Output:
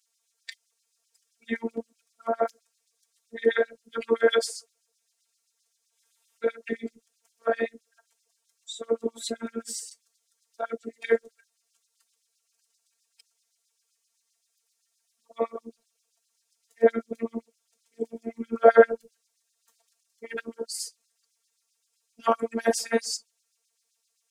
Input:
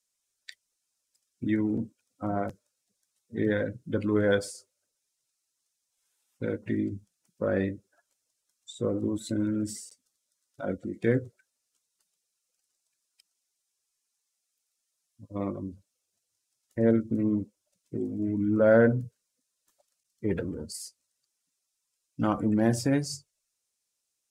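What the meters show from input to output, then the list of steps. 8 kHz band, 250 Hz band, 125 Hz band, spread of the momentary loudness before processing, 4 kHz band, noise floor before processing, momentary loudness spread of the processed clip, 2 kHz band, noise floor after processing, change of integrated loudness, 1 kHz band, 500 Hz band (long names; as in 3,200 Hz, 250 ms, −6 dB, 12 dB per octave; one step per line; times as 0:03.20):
+5.5 dB, −8.0 dB, below −15 dB, 16 LU, +7.5 dB, −82 dBFS, 17 LU, +4.0 dB, −77 dBFS, +1.0 dB, +8.0 dB, +4.0 dB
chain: auto-filter high-pass sine 7.7 Hz 410–4,900 Hz
phases set to zero 229 Hz
level +6.5 dB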